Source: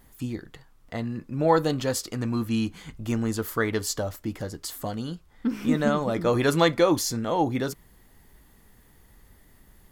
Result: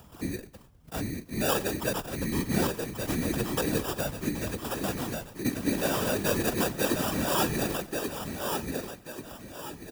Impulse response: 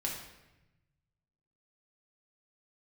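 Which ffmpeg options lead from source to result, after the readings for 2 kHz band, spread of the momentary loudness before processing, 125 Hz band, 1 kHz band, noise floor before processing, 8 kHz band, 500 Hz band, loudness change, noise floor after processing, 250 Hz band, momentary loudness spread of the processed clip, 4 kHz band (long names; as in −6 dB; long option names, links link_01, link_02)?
−0.5 dB, 13 LU, −3.5 dB, −4.5 dB, −57 dBFS, +0.5 dB, −5.0 dB, −3.5 dB, −53 dBFS, −3.5 dB, 12 LU, −0.5 dB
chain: -filter_complex "[0:a]agate=range=-8dB:threshold=-52dB:ratio=16:detection=peak,asplit=2[link_01][link_02];[link_02]adelay=101,lowpass=frequency=1100:poles=1,volume=-21dB,asplit=2[link_03][link_04];[link_04]adelay=101,lowpass=frequency=1100:poles=1,volume=0.45,asplit=2[link_05][link_06];[link_06]adelay=101,lowpass=frequency=1100:poles=1,volume=0.45[link_07];[link_03][link_05][link_07]amix=inputs=3:normalize=0[link_08];[link_01][link_08]amix=inputs=2:normalize=0,alimiter=limit=-15dB:level=0:latency=1:release=188,acrusher=samples=21:mix=1:aa=0.000001,asplit=2[link_09][link_10];[link_10]aecho=0:1:1135|2270|3405|4540:0.562|0.202|0.0729|0.0262[link_11];[link_09][link_11]amix=inputs=2:normalize=0,afftfilt=real='hypot(re,im)*cos(2*PI*random(0))':imag='hypot(re,im)*sin(2*PI*random(1))':win_size=512:overlap=0.75,afreqshift=17,highshelf=frequency=7800:gain=10.5,acompressor=mode=upward:threshold=-44dB:ratio=2.5,volume=3dB"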